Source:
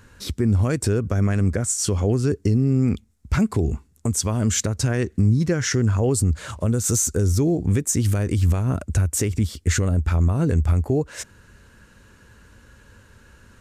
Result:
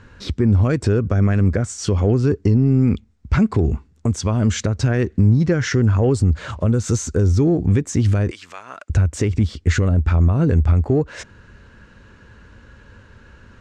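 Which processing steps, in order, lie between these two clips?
8.31–8.9 HPF 1200 Hz 12 dB/oct; in parallel at -11.5 dB: soft clip -23 dBFS, distortion -8 dB; on the sum: air absorption 140 m; gain +3 dB

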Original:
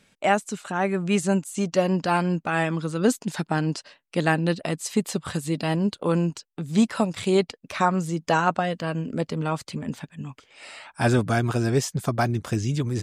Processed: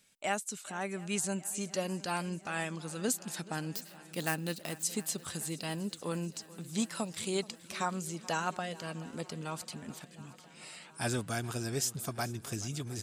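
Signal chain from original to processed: 3.75–4.83 switching dead time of 0.054 ms; pre-emphasis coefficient 0.8; swung echo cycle 0.714 s, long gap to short 1.5:1, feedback 62%, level -19.5 dB

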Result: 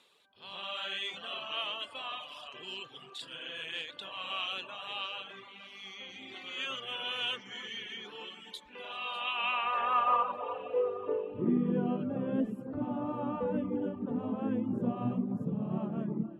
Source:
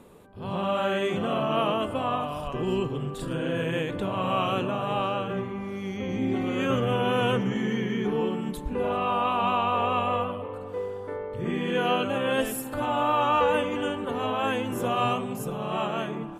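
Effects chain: band-pass sweep 3700 Hz -> 200 Hz, 9.14–11.77; echo with dull and thin repeats by turns 0.299 s, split 1700 Hz, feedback 59%, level -10 dB; reverb removal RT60 0.83 s; gain +5.5 dB

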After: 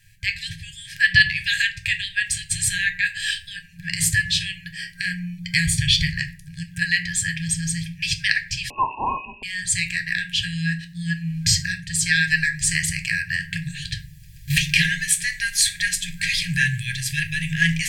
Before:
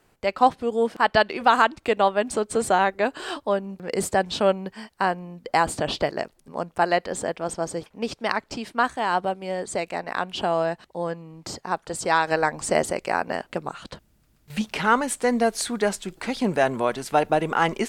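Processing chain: recorder AGC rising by 9.2 dB/s; FFT band-reject 180–1600 Hz; 4.89–6.06 comb 0.9 ms, depth 50%; reverb RT60 0.55 s, pre-delay 5 ms, DRR 5 dB; 8.7–9.43 inverted band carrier 2700 Hz; gain +7.5 dB

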